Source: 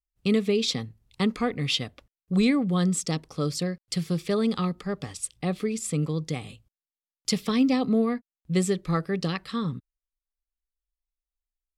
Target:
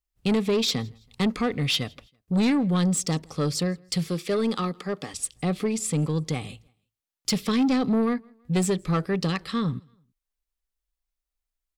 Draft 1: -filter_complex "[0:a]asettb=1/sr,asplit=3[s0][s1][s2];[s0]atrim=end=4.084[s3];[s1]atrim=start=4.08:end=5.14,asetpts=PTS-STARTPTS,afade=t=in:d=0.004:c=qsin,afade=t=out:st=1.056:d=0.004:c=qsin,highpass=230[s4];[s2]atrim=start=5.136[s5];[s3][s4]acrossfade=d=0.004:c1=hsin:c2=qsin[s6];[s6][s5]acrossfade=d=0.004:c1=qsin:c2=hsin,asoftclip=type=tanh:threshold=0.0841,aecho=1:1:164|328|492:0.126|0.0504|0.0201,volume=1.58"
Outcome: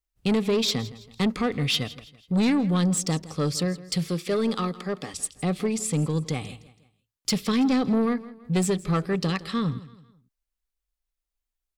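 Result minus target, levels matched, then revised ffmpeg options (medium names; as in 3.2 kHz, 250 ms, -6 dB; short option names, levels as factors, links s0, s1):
echo-to-direct +11 dB
-filter_complex "[0:a]asettb=1/sr,asplit=3[s0][s1][s2];[s0]atrim=end=4.084[s3];[s1]atrim=start=4.08:end=5.14,asetpts=PTS-STARTPTS,afade=t=in:d=0.004:c=qsin,afade=t=out:st=1.056:d=0.004:c=qsin,highpass=230[s4];[s2]atrim=start=5.136[s5];[s3][s4]acrossfade=d=0.004:c1=hsin:c2=qsin[s6];[s6][s5]acrossfade=d=0.004:c1=qsin:c2=hsin,asoftclip=type=tanh:threshold=0.0841,aecho=1:1:164|328:0.0355|0.0142,volume=1.58"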